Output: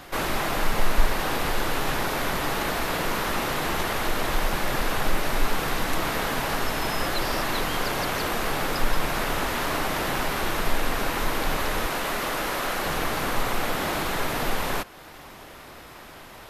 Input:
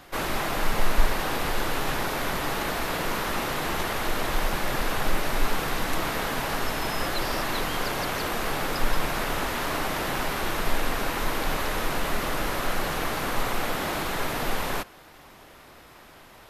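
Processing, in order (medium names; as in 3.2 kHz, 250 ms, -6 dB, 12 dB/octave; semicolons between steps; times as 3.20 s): 11.86–12.86 s: bass shelf 170 Hz -11 dB; in parallel at -1 dB: compression, threshold -38 dBFS, peak gain reduction 23 dB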